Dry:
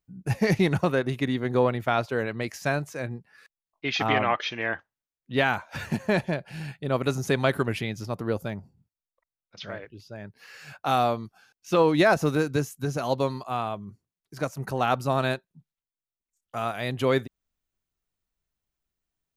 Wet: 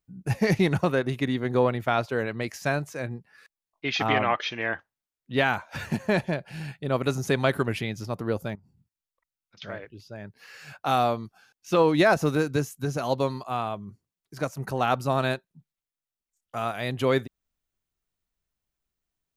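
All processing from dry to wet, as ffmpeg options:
-filter_complex "[0:a]asettb=1/sr,asplit=3[a][b][c];[a]atrim=end=8.554[d];[b]atrim=start=8.55:end=9.62,asetpts=PTS-STARTPTS,afade=t=in:d=0.004:c=qsin,afade=t=out:st=1.066:d=0.004:c=qsin,equalizer=f=580:t=o:w=0.97:g=-9,acompressor=threshold=-52dB:ratio=5:attack=3.2:release=140:knee=1:detection=peak[e];[c]atrim=start=9.616[f];[d][e]acrossfade=d=0.004:c1=hsin:c2=qsin[g];[g][f]acrossfade=d=0.004:c1=qsin:c2=hsin"

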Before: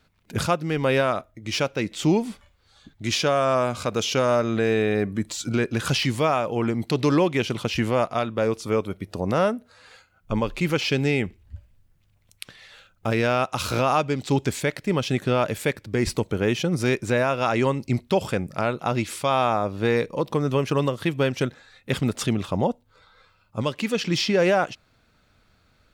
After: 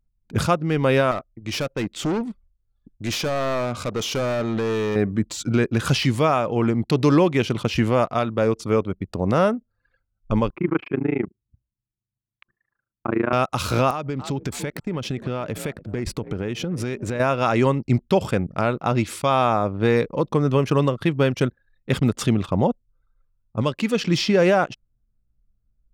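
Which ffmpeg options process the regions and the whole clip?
-filter_complex "[0:a]asettb=1/sr,asplit=3[a][b][c];[a]atrim=end=1.114[d];[b]atrim=start=1.11:end=4.96,asetpts=PTS-STARTPTS,afade=t=in:d=0.004:c=qsin,afade=t=out:st=3.846:d=0.004:c=qsin,lowshelf=f=230:g=-3,asoftclip=type=hard:threshold=-23.5dB[e];[c]atrim=start=4.956[f];[d][e]acrossfade=d=0.004:c1=hsin:c2=qsin[g];[g][f]acrossfade=d=0.004:c1=qsin:c2=hsin,asettb=1/sr,asplit=3[h][i][j];[h]atrim=end=10.504[k];[i]atrim=start=10.5:end=13.33,asetpts=PTS-STARTPTS,afade=t=in:d=0.004:c=qsin,afade=t=out:st=2.826:d=0.004:c=qsin,tremolo=f=27:d=0.947,highpass=170,equalizer=f=340:t=q:w=4:g=9,equalizer=f=510:t=q:w=4:g=-8,equalizer=f=1.1k:t=q:w=4:g=7,lowpass=f=2.1k:w=0.5412,lowpass=f=2.1k:w=1.3066[l];[j]atrim=start=13.326[m];[k][l]acrossfade=d=0.004:c1=hsin:c2=qsin[n];[n][m]acrossfade=d=0.004:c1=qsin:c2=hsin,asettb=1/sr,asplit=3[o][p][q];[o]atrim=end=13.904[r];[p]atrim=start=13.9:end=17.2,asetpts=PTS-STARTPTS,afade=t=in:d=0.004:c=qsin,afade=t=out:st=3.296:d=0.004:c=qsin,asplit=4[s][t][u][v];[t]adelay=288,afreqshift=46,volume=-19dB[w];[u]adelay=576,afreqshift=92,volume=-26.7dB[x];[v]adelay=864,afreqshift=138,volume=-34.5dB[y];[s][w][x][y]amix=inputs=4:normalize=0,atrim=end_sample=145530,acompressor=threshold=-26dB:ratio=6:attack=3.2:release=140:knee=1:detection=peak,aeval=exprs='(mod(7.5*val(0)+1,2)-1)/7.5':c=same[z];[q]atrim=start=17.196[aa];[r][z]acrossfade=d=0.004:c1=hsin:c2=qsin[ab];[ab][aa]acrossfade=d=0.004:c1=qsin:c2=hsin,equalizer=f=1.2k:t=o:w=0.62:g=2.5,anlmdn=1,lowshelf=f=460:g=5"

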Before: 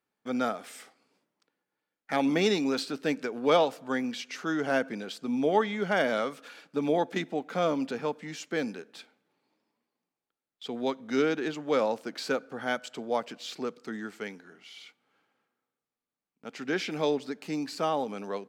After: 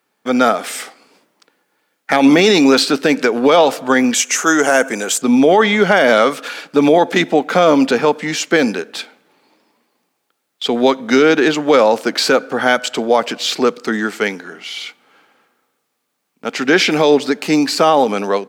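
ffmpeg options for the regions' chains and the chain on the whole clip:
-filter_complex "[0:a]asettb=1/sr,asplit=3[a][b][c];[a]atrim=end=4.144[d];[b]atrim=start=4.14:end=5.22,asetpts=PTS-STARTPTS,afade=t=in:d=0.004:c=qsin,afade=t=out:st=1.076:d=0.004:c=qsin,highpass=f=400:p=1,highshelf=f=5.6k:t=q:w=3:g=8[e];[c]atrim=start=5.216[f];[d][e]acrossfade=d=0.004:c1=hsin:c2=qsin[g];[g][f]acrossfade=d=0.004:c1=qsin:c2=hsin,highpass=f=270:p=1,dynaudnorm=f=350:g=3:m=3.5dB,alimiter=level_in=18.5dB:limit=-1dB:release=50:level=0:latency=1,volume=-1dB"

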